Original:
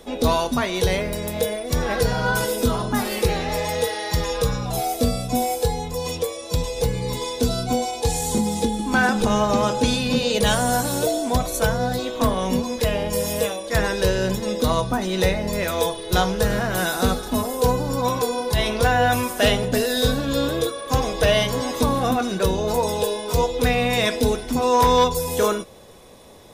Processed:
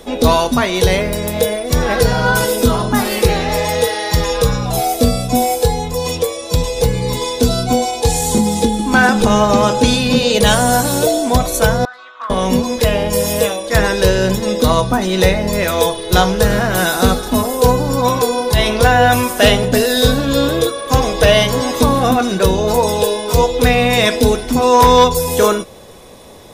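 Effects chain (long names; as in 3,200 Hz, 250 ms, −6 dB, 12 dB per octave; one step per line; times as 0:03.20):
0:11.85–0:12.30: four-pole ladder band-pass 1,400 Hz, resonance 70%
level +7.5 dB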